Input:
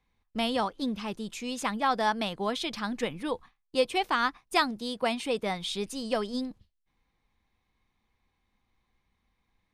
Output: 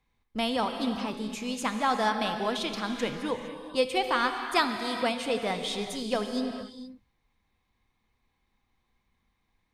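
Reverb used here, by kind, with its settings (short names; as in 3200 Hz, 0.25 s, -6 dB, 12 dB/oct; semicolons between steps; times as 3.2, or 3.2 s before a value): non-linear reverb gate 0.49 s flat, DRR 5.5 dB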